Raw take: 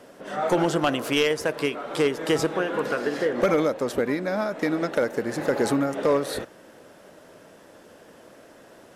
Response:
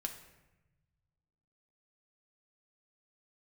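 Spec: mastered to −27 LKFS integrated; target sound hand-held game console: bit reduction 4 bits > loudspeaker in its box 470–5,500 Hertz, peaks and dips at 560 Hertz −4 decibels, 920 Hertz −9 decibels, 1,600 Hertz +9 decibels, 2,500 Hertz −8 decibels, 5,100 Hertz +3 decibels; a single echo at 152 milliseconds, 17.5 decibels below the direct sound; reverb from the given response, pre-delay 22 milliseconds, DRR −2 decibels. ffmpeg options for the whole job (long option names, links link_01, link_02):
-filter_complex "[0:a]aecho=1:1:152:0.133,asplit=2[link_01][link_02];[1:a]atrim=start_sample=2205,adelay=22[link_03];[link_02][link_03]afir=irnorm=-1:irlink=0,volume=2.5dB[link_04];[link_01][link_04]amix=inputs=2:normalize=0,acrusher=bits=3:mix=0:aa=0.000001,highpass=470,equalizer=frequency=560:width_type=q:width=4:gain=-4,equalizer=frequency=920:width_type=q:width=4:gain=-9,equalizer=frequency=1600:width_type=q:width=4:gain=9,equalizer=frequency=2500:width_type=q:width=4:gain=-8,equalizer=frequency=5100:width_type=q:width=4:gain=3,lowpass=frequency=5500:width=0.5412,lowpass=frequency=5500:width=1.3066,volume=-4.5dB"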